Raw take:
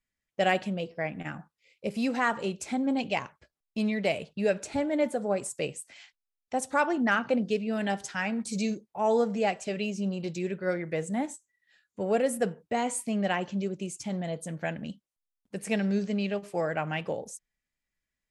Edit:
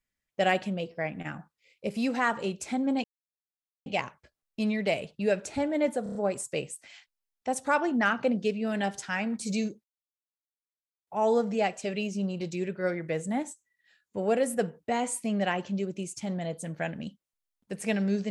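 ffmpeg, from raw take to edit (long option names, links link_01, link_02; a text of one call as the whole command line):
ffmpeg -i in.wav -filter_complex "[0:a]asplit=7[link_01][link_02][link_03][link_04][link_05][link_06][link_07];[link_01]atrim=end=3.04,asetpts=PTS-STARTPTS,afade=type=out:start_time=3.036:duration=0.004:curve=hsin,apad=pad_dur=0.82[link_08];[link_02]atrim=start=3.04:end=5.242,asetpts=PTS-STARTPTS,afade=type=in:duration=0.004:curve=hsin[link_09];[link_03]atrim=start=5.208:end=5.242[link_10];[link_04]atrim=start=5.208:end=5.242[link_11];[link_05]atrim=start=5.208:end=5.242[link_12];[link_06]atrim=start=5.208:end=8.9,asetpts=PTS-STARTPTS,afade=type=out:start_time=3.688:duration=0.004:curve=hsin,apad=pad_dur=1.23[link_13];[link_07]atrim=start=8.9,asetpts=PTS-STARTPTS,afade=type=in:duration=0.004:curve=hsin[link_14];[link_08][link_09]concat=n=2:v=0:a=1[link_15];[link_15][link_10]acrossfade=duration=0.004:curve1=hsin:curve2=hsin[link_16];[link_16][link_11]acrossfade=duration=0.004:curve1=hsin:curve2=hsin[link_17];[link_17][link_12]acrossfade=duration=0.004:curve1=hsin:curve2=hsin[link_18];[link_13][link_14]concat=n=2:v=0:a=1[link_19];[link_18][link_19]acrossfade=duration=0.004:curve1=hsin:curve2=hsin" out.wav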